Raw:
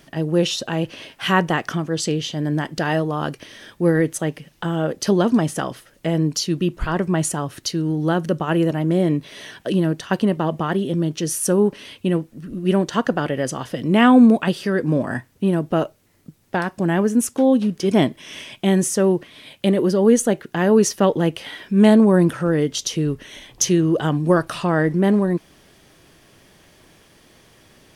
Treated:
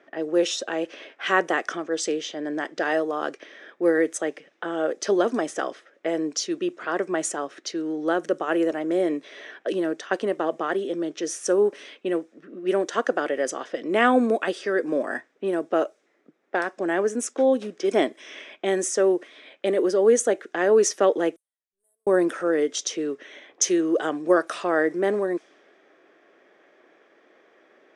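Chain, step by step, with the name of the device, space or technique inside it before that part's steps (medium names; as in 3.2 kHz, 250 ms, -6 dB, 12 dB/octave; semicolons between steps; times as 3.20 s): phone speaker on a table (cabinet simulation 340–8700 Hz, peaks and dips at 940 Hz -8 dB, 2.9 kHz -7 dB, 4.4 kHz -8 dB); level-controlled noise filter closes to 2 kHz, open at -20 dBFS; 21.36–22.07 s: inverse Chebyshev band-stop 100–5500 Hz, stop band 60 dB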